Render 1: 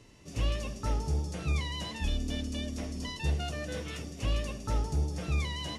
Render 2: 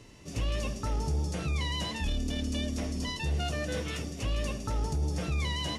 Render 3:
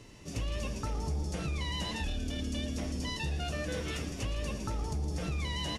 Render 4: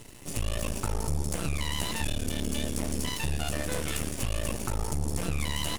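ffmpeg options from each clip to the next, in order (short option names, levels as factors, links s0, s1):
-af "alimiter=level_in=1.41:limit=0.0631:level=0:latency=1:release=24,volume=0.708,volume=1.58"
-filter_complex "[0:a]acompressor=threshold=0.0282:ratio=6,asplit=2[s0][s1];[s1]asplit=7[s2][s3][s4][s5][s6][s7][s8];[s2]adelay=117,afreqshift=-130,volume=0.251[s9];[s3]adelay=234,afreqshift=-260,volume=0.148[s10];[s4]adelay=351,afreqshift=-390,volume=0.0871[s11];[s5]adelay=468,afreqshift=-520,volume=0.0519[s12];[s6]adelay=585,afreqshift=-650,volume=0.0305[s13];[s7]adelay=702,afreqshift=-780,volume=0.018[s14];[s8]adelay=819,afreqshift=-910,volume=0.0106[s15];[s9][s10][s11][s12][s13][s14][s15]amix=inputs=7:normalize=0[s16];[s0][s16]amix=inputs=2:normalize=0"
-af "aexciter=amount=3.1:drive=8.5:freq=7800,aeval=exprs='max(val(0),0)':c=same,volume=2.37"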